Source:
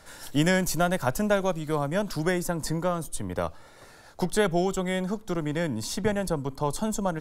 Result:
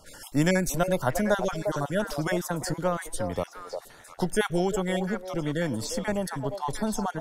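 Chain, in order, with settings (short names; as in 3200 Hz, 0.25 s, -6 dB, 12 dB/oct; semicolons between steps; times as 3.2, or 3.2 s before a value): random spectral dropouts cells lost 23%; on a send: delay with a stepping band-pass 0.352 s, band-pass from 610 Hz, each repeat 1.4 oct, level -4 dB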